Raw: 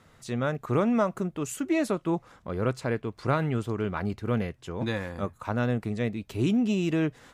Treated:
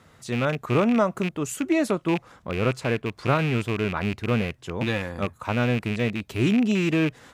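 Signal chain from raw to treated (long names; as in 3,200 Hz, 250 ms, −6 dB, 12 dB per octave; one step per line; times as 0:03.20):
loose part that buzzes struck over −31 dBFS, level −24 dBFS
high-pass filter 45 Hz
level +3.5 dB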